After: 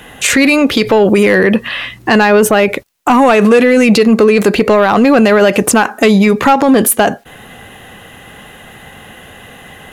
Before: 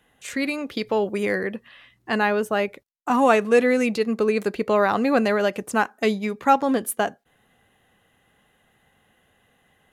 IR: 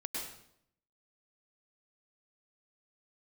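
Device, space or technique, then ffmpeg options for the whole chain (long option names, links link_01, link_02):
mastering chain: -af "equalizer=frequency=2600:width_type=o:width=0.28:gain=2.5,acompressor=threshold=-21dB:ratio=3,asoftclip=type=tanh:threshold=-16.5dB,asoftclip=type=hard:threshold=-18.5dB,alimiter=level_in=28.5dB:limit=-1dB:release=50:level=0:latency=1,volume=-1dB"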